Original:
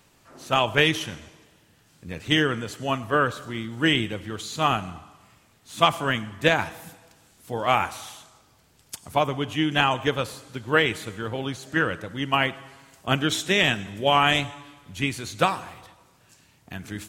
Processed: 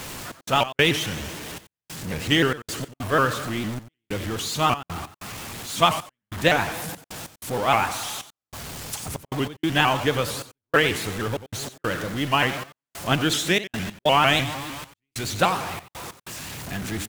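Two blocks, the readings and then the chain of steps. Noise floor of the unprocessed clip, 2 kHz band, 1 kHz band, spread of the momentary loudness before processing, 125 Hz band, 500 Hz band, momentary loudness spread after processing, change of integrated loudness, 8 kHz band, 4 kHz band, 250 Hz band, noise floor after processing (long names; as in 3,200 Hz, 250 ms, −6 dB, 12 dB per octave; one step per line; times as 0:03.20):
−60 dBFS, 0.0 dB, +1.0 dB, 18 LU, +1.5 dB, +0.5 dB, 16 LU, 0.0 dB, +6.5 dB, +0.5 dB, +0.5 dB, below −85 dBFS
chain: converter with a step at zero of −28.5 dBFS
bit reduction 7 bits
gate pattern "xx.x.xxxxx..xx" 95 BPM −60 dB
single-tap delay 90 ms −14 dB
pitch modulation by a square or saw wave saw up 6.6 Hz, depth 160 cents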